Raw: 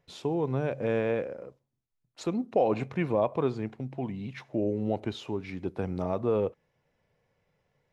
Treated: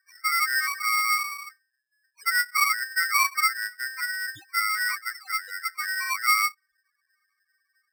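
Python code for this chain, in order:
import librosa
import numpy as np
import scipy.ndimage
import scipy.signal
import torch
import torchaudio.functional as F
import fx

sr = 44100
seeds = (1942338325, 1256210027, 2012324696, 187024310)

y = fx.spec_topn(x, sr, count=2)
y = y * np.sign(np.sin(2.0 * np.pi * 1700.0 * np.arange(len(y)) / sr))
y = y * 10.0 ** (8.0 / 20.0)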